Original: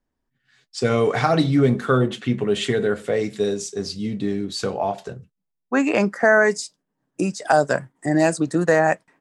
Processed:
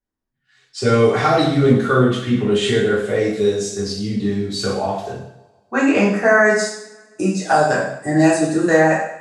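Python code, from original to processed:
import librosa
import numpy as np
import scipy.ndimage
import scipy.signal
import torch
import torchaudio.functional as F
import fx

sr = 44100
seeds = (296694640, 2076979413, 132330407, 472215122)

y = fx.noise_reduce_blind(x, sr, reduce_db=9)
y = fx.rev_double_slope(y, sr, seeds[0], early_s=0.67, late_s=1.9, knee_db=-23, drr_db=-6.5)
y = y * 10.0 ** (-3.5 / 20.0)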